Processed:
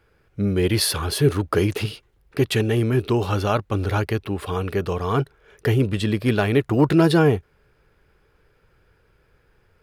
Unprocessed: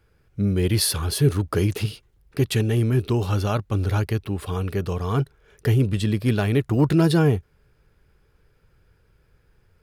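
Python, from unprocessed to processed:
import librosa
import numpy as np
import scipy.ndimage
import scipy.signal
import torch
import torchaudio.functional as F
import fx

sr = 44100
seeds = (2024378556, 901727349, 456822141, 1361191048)

y = fx.bass_treble(x, sr, bass_db=-7, treble_db=-6)
y = y * 10.0 ** (5.0 / 20.0)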